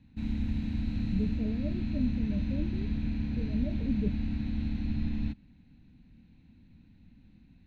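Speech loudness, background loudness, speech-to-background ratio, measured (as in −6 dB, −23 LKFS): −36.5 LKFS, −33.5 LKFS, −3.0 dB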